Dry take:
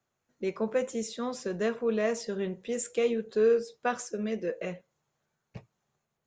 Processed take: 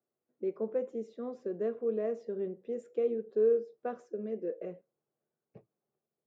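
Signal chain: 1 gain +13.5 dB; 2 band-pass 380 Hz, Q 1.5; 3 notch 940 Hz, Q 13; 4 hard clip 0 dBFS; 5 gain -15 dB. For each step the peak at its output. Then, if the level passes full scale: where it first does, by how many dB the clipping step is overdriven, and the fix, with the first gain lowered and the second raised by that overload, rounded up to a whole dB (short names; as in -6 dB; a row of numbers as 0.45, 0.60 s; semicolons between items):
-1.5, -3.5, -3.5, -3.5, -18.5 dBFS; no overload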